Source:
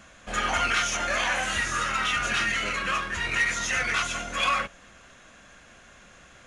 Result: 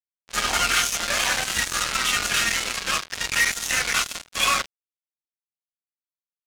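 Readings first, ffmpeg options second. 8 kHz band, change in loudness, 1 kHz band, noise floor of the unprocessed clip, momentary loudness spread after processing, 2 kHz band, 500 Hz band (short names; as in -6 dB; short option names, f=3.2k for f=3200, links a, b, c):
+8.5 dB, +3.5 dB, 0.0 dB, -52 dBFS, 5 LU, +1.5 dB, 0.0 dB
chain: -af "acrusher=bits=3:mix=0:aa=0.5,highshelf=f=3.8k:g=12,adynamicsmooth=sensitivity=7:basefreq=4k"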